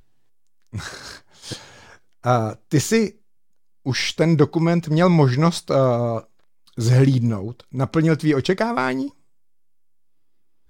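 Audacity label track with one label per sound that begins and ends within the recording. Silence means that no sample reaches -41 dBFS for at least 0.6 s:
0.730000	3.110000	sound
3.860000	9.100000	sound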